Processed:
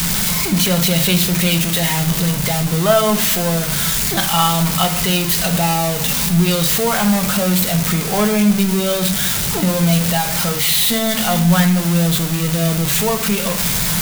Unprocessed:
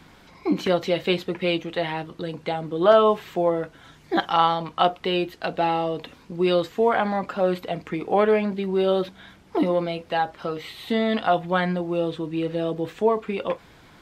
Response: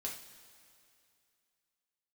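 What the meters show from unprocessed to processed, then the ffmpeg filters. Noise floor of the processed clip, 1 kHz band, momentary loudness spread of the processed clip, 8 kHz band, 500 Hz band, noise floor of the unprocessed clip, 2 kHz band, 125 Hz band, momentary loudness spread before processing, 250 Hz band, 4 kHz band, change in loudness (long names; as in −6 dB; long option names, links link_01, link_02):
−20 dBFS, +2.5 dB, 3 LU, can't be measured, +0.5 dB, −52 dBFS, +9.0 dB, +16.5 dB, 10 LU, +9.5 dB, +14.0 dB, +8.5 dB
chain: -filter_complex "[0:a]aeval=exprs='val(0)+0.5*0.0944*sgn(val(0))':channel_layout=same,asplit=2[link_01][link_02];[link_02]lowshelf=frequency=240:width_type=q:width=3:gain=10.5[link_03];[1:a]atrim=start_sample=2205[link_04];[link_03][link_04]afir=irnorm=-1:irlink=0,volume=1dB[link_05];[link_01][link_05]amix=inputs=2:normalize=0,crystalizer=i=4.5:c=0,volume=-7dB"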